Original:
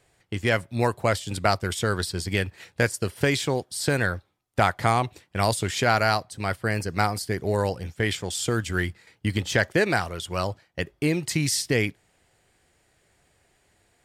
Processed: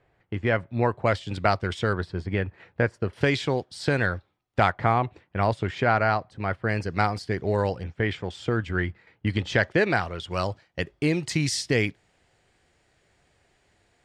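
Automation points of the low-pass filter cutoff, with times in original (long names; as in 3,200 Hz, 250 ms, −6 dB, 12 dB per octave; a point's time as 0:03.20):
2,000 Hz
from 0:01.06 3,500 Hz
from 0:01.93 1,700 Hz
from 0:03.13 4,100 Hz
from 0:04.71 2,100 Hz
from 0:06.69 3,900 Hz
from 0:07.84 2,300 Hz
from 0:09.27 3,800 Hz
from 0:10.31 6,400 Hz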